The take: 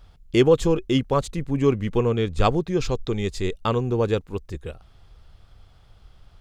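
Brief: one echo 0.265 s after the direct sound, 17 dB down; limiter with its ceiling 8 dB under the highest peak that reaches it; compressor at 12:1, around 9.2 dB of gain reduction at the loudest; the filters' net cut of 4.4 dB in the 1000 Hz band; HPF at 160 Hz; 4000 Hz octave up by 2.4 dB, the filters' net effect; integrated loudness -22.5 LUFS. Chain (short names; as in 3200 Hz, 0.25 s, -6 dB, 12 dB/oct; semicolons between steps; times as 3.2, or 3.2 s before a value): HPF 160 Hz; bell 1000 Hz -6 dB; bell 4000 Hz +3.5 dB; compressor 12:1, threshold -22 dBFS; limiter -19 dBFS; echo 0.265 s -17 dB; gain +8 dB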